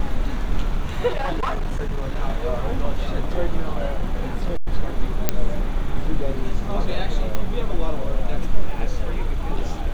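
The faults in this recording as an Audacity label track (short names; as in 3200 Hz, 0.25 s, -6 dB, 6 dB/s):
1.070000	2.190000	clipped -19 dBFS
3.750000	4.690000	clipped -15 dBFS
5.290000	5.290000	pop -3 dBFS
7.350000	7.350000	pop -9 dBFS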